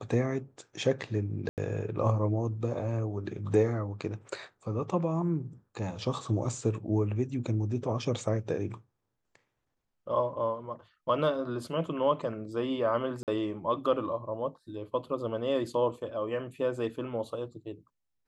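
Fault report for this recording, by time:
0:01.49–0:01.58: drop-out 88 ms
0:13.23–0:13.28: drop-out 48 ms

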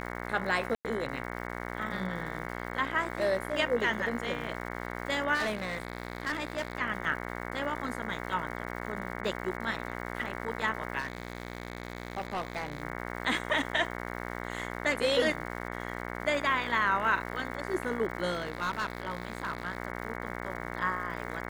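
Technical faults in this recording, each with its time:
mains buzz 60 Hz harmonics 37 −38 dBFS
surface crackle 280 per second −42 dBFS
0:00.75–0:00.85: drop-out 98 ms
0:05.34–0:06.75: clipping −27.5 dBFS
0:10.98–0:12.82: clipping −29.5 dBFS
0:18.30–0:19.77: clipping −27 dBFS

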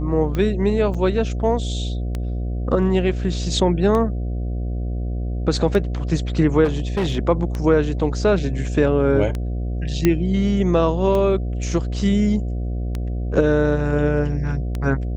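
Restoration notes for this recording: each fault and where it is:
mains buzz 60 Hz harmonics 12 −24 dBFS
scratch tick 33 1/3 rpm −13 dBFS
0:00.94–0:00.95: drop-out 6.1 ms
0:06.64–0:07.19: clipping −17 dBFS
0:10.05: click −4 dBFS

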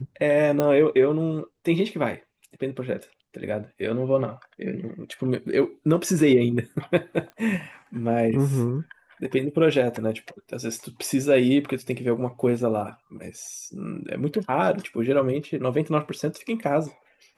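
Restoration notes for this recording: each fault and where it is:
0:00.60: click −10 dBFS
0:07.30: click −29 dBFS

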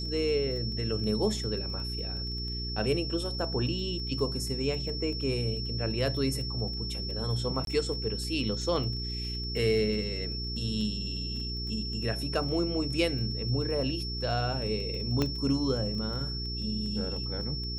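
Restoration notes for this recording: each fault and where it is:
surface crackle 15 per second −36 dBFS
mains hum 60 Hz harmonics 7 −36 dBFS
whistle 5,400 Hz −36 dBFS
0:07.65–0:07.67: drop-out 22 ms
0:15.22: click −14 dBFS

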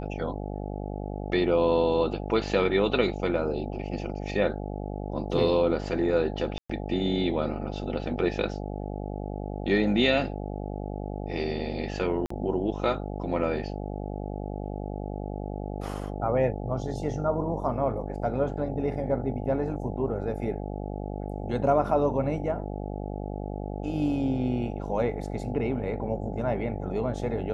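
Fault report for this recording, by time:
mains buzz 50 Hz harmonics 17 −34 dBFS
0:06.58–0:06.70: drop-out 115 ms
0:12.26–0:12.30: drop-out 44 ms

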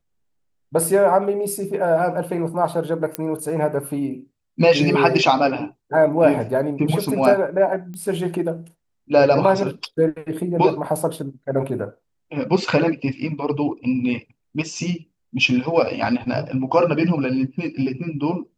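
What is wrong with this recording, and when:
0:03.15: click −7 dBFS
0:07.94: click −24 dBFS

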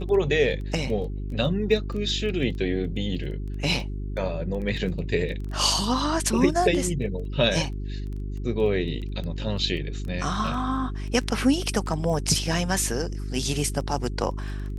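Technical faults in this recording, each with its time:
surface crackle 10 per second −32 dBFS
mains hum 50 Hz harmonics 8 −31 dBFS

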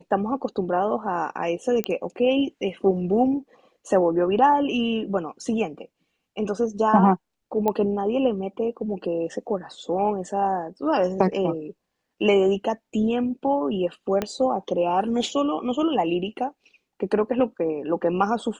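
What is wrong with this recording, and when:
0:01.84: click −10 dBFS
0:07.68: click −11 dBFS
0:14.22: click −11 dBFS

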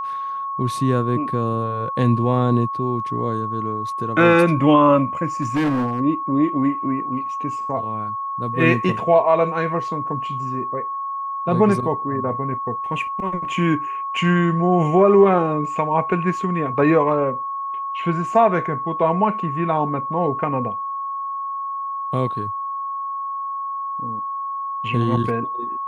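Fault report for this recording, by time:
whistle 1,100 Hz −24 dBFS
0:05.42–0:06.01: clipping −16.5 dBFS

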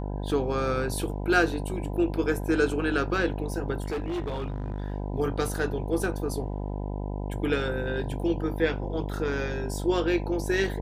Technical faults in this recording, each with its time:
mains buzz 50 Hz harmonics 20 −32 dBFS
0:03.82–0:04.92: clipping −27 dBFS

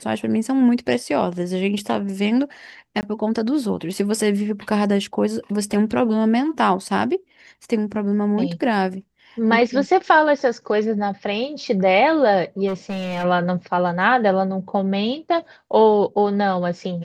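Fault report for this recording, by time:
0:03.01–0:03.03: drop-out 19 ms
0:12.67–0:13.25: clipping −21 dBFS

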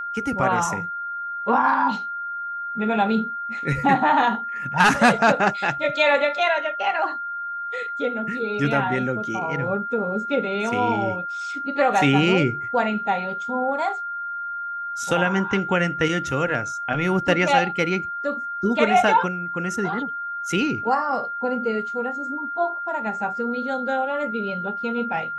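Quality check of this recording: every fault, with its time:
whistle 1,400 Hz −27 dBFS

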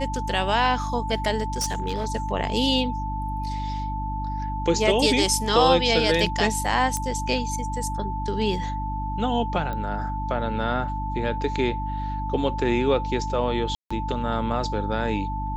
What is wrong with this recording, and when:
mains hum 50 Hz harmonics 6 −30 dBFS
whistle 880 Hz −30 dBFS
0:01.50–0:02.10: clipping −21 dBFS
0:06.97: click −12 dBFS
0:09.73: click −19 dBFS
0:13.75–0:13.90: drop-out 155 ms

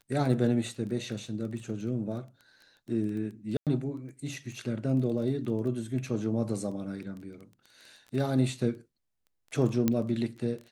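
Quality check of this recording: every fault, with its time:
surface crackle 12 per second −37 dBFS
0:03.57–0:03.67: drop-out 97 ms
0:09.88: click −12 dBFS

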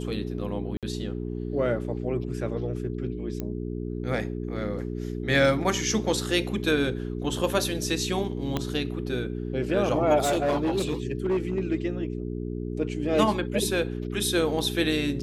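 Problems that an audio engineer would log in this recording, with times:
mains hum 60 Hz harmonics 7 −32 dBFS
0:00.77–0:00.83: drop-out 57 ms
0:03.40: click −18 dBFS
0:08.57: click −13 dBFS
0:10.23–0:11.60: clipping −20.5 dBFS

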